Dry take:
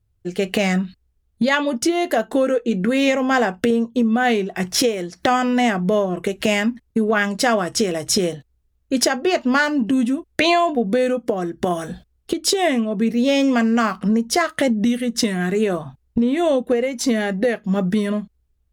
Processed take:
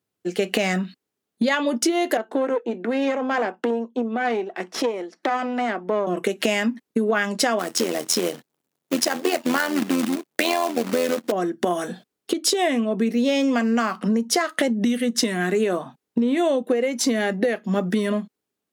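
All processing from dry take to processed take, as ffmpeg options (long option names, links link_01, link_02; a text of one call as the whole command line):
ffmpeg -i in.wav -filter_complex "[0:a]asettb=1/sr,asplit=3[link_01][link_02][link_03];[link_01]atrim=end=2.174[link_04];[link_02]atrim=start=2.17:end=6.07,asetpts=PTS-STARTPTS,afade=type=in:duration=0.004:curve=qsin,afade=type=out:start_time=3.896:duration=0.004:curve=qsin,highpass=frequency=250:width=0.5412,highpass=frequency=250:width=1.3066,aeval=exprs='(tanh(5.01*val(0)+0.8)-tanh(0.8))/5.01':channel_layout=same,aemphasis=mode=reproduction:type=75kf[link_05];[link_03]atrim=start=6.066[link_06];[link_04][link_05]acrossfade=duration=0.004:curve1=hsin:curve2=qsin[link_07];[link_07][link_06]acrossfade=duration=0.004:curve1=qsin:curve2=hsin,asettb=1/sr,asplit=3[link_08][link_09][link_10];[link_08]atrim=end=7.594[link_11];[link_09]atrim=start=7.59:end=11.32,asetpts=PTS-STARTPTS,afade=type=in:duration=0.004:curve=qsin,afade=type=out:start_time=3.726:duration=0.004:curve=qsin,acrusher=bits=2:mode=log:mix=0:aa=0.000001,tremolo=f=86:d=0.75[link_12];[link_10]atrim=start=11.316[link_13];[link_11][link_12]acrossfade=duration=0.004:curve1=hsin:curve2=qsin[link_14];[link_14][link_13]acrossfade=duration=0.004:curve1=qsin:curve2=hsin,highpass=frequency=210:width=0.5412,highpass=frequency=210:width=1.3066,acompressor=threshold=-19dB:ratio=6,volume=2dB" out.wav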